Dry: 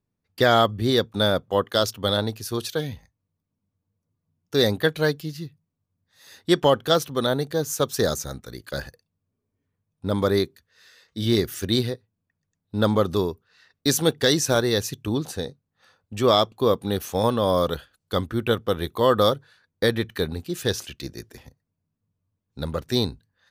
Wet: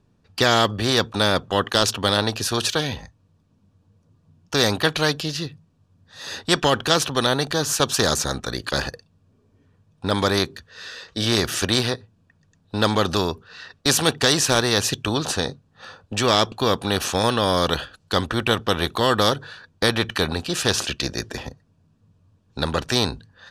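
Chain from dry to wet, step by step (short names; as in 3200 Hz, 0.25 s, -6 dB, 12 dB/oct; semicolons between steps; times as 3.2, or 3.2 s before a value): air absorption 74 m; notch 2100 Hz, Q 5.6; spectral compressor 2:1; gain +5 dB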